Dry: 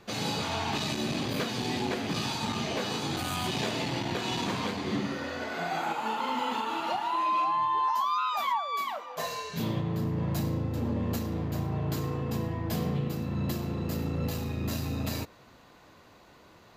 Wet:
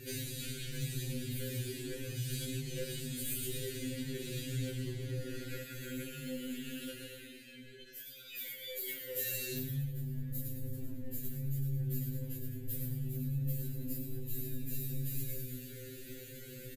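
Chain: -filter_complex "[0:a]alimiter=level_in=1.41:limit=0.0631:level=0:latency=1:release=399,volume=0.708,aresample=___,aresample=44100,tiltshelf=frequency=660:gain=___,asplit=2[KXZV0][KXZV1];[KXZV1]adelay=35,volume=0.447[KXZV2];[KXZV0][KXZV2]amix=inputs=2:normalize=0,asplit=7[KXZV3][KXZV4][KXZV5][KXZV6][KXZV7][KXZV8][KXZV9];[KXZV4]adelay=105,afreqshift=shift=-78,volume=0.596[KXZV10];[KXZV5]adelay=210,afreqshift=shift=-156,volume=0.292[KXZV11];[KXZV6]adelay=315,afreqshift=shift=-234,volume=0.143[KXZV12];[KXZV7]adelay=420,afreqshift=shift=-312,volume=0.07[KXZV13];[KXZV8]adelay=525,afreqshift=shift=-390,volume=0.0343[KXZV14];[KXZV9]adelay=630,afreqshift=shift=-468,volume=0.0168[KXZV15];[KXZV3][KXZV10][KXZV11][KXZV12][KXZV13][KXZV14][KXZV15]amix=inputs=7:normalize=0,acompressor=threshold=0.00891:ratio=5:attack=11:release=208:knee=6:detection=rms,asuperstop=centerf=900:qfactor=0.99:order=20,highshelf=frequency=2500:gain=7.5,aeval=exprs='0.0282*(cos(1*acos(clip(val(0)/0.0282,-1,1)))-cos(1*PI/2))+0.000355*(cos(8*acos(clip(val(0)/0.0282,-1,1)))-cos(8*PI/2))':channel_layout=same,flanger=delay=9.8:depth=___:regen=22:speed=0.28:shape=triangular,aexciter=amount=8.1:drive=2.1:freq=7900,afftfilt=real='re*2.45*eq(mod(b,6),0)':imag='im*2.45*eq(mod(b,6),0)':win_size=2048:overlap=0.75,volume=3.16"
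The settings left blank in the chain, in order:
32000, 6.5, 9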